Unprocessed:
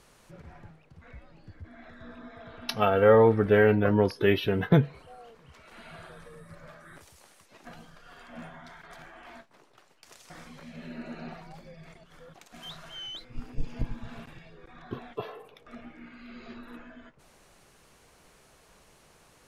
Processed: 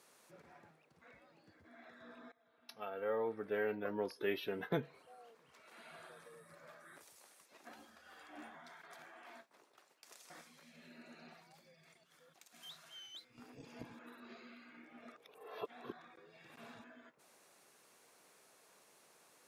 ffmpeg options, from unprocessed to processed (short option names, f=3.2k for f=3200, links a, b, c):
-filter_complex "[0:a]asettb=1/sr,asplit=3[a][b][c];[a]atrim=end=7.694[d];[b]atrim=start=7.69:end=8.55,asetpts=PTS-STARTPTS,afade=t=in:d=0.004:c=qsin,afade=t=out:st=0.856:d=0.004:c=qsin,afreqshift=61[e];[c]atrim=start=8.546[f];[d][e]acrossfade=d=0.004:c1=hsin:c2=qsin[g];[g][f]acrossfade=d=0.004:c1=qsin:c2=hsin,asettb=1/sr,asplit=3[h][i][j];[h]atrim=end=10.414[k];[i]atrim=start=10.41:end=13.38,asetpts=PTS-STARTPTS,afade=t=in:d=0.004:c=qsin,afade=t=out:st=2.966:d=0.004:c=qsin,equalizer=f=560:w=0.32:g=-8.5[l];[j]atrim=start=13.376[m];[k][l]acrossfade=d=0.004:c1=hsin:c2=qsin[n];[n][m]acrossfade=d=0.004:c1=qsin:c2=hsin,asplit=4[o][p][q][r];[o]atrim=end=2.32,asetpts=PTS-STARTPTS,afade=t=out:st=2.316:d=0.004:c=hsin:silence=0.0794328[s];[p]atrim=start=2.32:end=13.992,asetpts=PTS-STARTPTS,afade=t=in:d=3.75:silence=0.0794328[t];[q]atrim=start=13.988:end=16.842,asetpts=PTS-STARTPTS,areverse[u];[r]atrim=start=16.838[v];[s][t]concat=n=2:v=0:a=1[w];[w][u]acrossfade=d=0.004:c1=hsin:c2=hsin[x];[x][v]acrossfade=d=0.004:c1=hsin:c2=hsin,highpass=280,highshelf=f=9.2k:g=7.5,bandreject=f=3k:w=22,volume=-7.5dB"